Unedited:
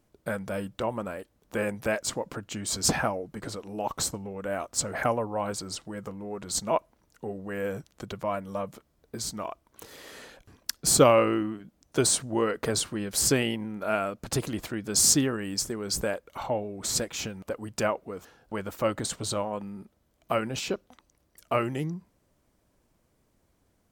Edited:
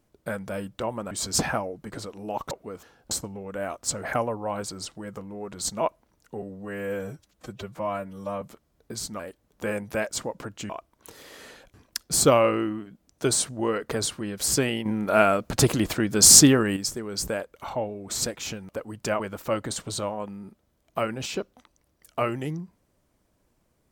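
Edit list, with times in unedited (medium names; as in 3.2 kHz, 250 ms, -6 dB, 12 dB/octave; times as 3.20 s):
1.11–2.61 s: move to 9.43 s
7.32–8.65 s: stretch 1.5×
13.59–15.50 s: gain +8.5 dB
17.93–18.53 s: move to 4.01 s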